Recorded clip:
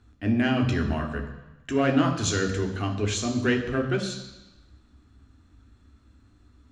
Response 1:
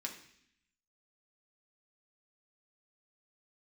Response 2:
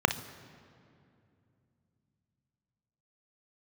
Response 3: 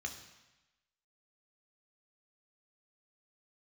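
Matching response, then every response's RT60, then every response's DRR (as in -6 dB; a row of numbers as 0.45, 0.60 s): 3; 0.65, 2.6, 1.0 s; 0.0, 9.0, 3.0 dB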